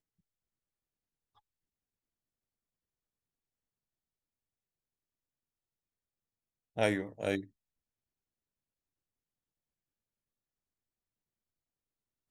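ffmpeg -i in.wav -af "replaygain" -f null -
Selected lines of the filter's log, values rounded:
track_gain = +39.1 dB
track_peak = 0.137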